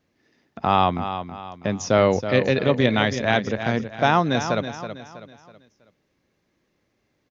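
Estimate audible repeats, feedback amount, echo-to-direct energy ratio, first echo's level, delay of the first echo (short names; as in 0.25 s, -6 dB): 4, 39%, -9.5 dB, -10.0 dB, 0.324 s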